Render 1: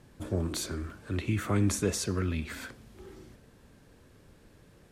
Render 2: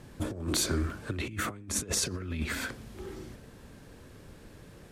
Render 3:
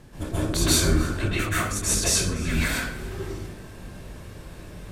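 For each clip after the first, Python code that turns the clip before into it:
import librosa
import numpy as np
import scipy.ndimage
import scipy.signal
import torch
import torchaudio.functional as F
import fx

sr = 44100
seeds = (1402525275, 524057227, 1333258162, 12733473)

y1 = fx.over_compress(x, sr, threshold_db=-34.0, ratio=-0.5)
y1 = y1 * 10.0 ** (2.5 / 20.0)
y2 = fx.octave_divider(y1, sr, octaves=2, level_db=-4.0)
y2 = y2 + 10.0 ** (-19.5 / 20.0) * np.pad(y2, (int(294 * sr / 1000.0), 0))[:len(y2)]
y2 = fx.rev_plate(y2, sr, seeds[0], rt60_s=0.51, hf_ratio=0.8, predelay_ms=120, drr_db=-9.0)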